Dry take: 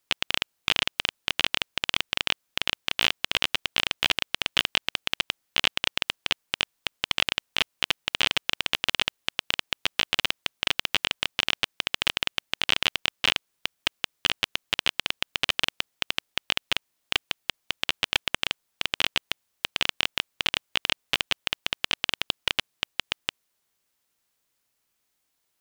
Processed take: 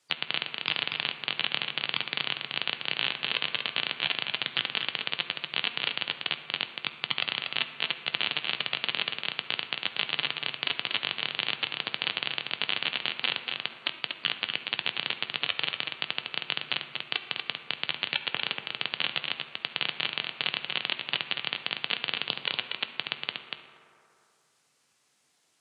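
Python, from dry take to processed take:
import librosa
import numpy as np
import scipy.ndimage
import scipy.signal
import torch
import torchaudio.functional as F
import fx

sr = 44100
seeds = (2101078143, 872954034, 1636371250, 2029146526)

y = scipy.signal.sosfilt(scipy.signal.butter(4, 97.0, 'highpass', fs=sr, output='sos'), x)
y = fx.spec_gate(y, sr, threshold_db=-15, keep='strong')
y = scipy.signal.sosfilt(scipy.signal.butter(4, 9500.0, 'lowpass', fs=sr, output='sos'), y)
y = y + 10.0 ** (-5.5 / 20.0) * np.pad(y, (int(238 * sr / 1000.0), 0))[:len(y)]
y = fx.rev_fdn(y, sr, rt60_s=1.8, lf_ratio=0.8, hf_ratio=0.45, size_ms=40.0, drr_db=7.5)
y = fx.band_squash(y, sr, depth_pct=40)
y = y * 10.0 ** (-4.5 / 20.0)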